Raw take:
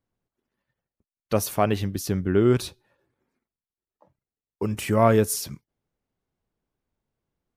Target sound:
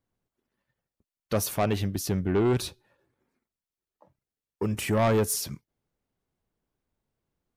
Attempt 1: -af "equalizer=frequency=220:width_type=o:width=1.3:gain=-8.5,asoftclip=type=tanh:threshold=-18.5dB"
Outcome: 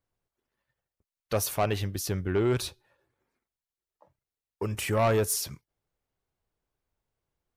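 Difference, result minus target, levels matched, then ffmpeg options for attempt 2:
250 Hz band −3.0 dB
-af "asoftclip=type=tanh:threshold=-18.5dB"

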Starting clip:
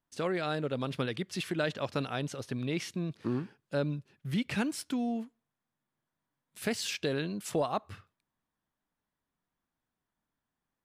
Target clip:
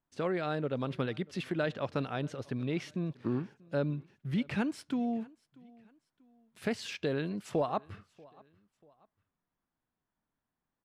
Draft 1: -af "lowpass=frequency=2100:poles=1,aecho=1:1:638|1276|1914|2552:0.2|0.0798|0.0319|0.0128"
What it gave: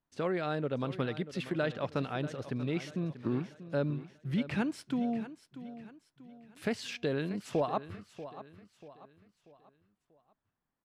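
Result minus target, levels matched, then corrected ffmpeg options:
echo-to-direct +11 dB
-af "lowpass=frequency=2100:poles=1,aecho=1:1:638|1276:0.0562|0.0225"

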